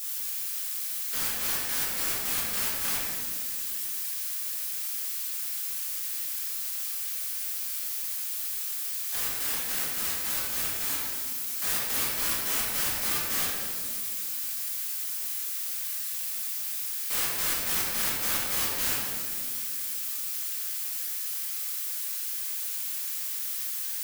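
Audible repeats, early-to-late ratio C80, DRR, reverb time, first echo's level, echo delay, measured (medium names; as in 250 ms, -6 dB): no echo, 0.5 dB, -8.5 dB, 2.1 s, no echo, no echo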